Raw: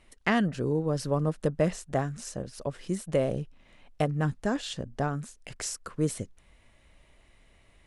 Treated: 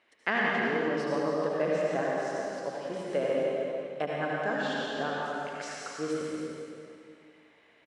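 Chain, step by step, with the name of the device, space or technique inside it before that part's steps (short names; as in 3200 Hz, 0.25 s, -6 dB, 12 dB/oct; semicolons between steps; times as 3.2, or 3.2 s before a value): station announcement (BPF 360–4200 Hz; bell 1600 Hz +7 dB 0.23 oct; loudspeakers at several distances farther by 59 m -9 dB, 100 m -10 dB; reverb RT60 2.4 s, pre-delay 68 ms, DRR -4 dB); gain -3.5 dB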